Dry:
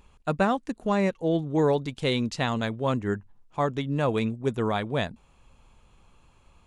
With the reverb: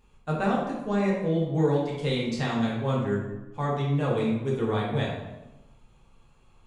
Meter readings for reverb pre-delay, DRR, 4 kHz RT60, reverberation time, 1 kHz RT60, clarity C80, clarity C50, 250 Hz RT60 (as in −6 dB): 3 ms, −5.5 dB, 0.70 s, 1.0 s, 0.95 s, 5.0 dB, 1.0 dB, 1.2 s